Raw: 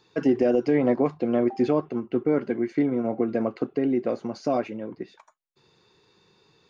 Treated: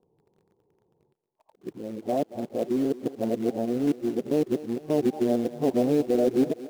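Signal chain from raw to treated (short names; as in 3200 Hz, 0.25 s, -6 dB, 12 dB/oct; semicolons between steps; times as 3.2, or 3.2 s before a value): whole clip reversed; steep low-pass 870 Hz 48 dB/oct; in parallel at -6.5 dB: companded quantiser 4-bit; on the sum: thinning echo 0.229 s, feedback 51%, high-pass 340 Hz, level -14 dB; gain -5 dB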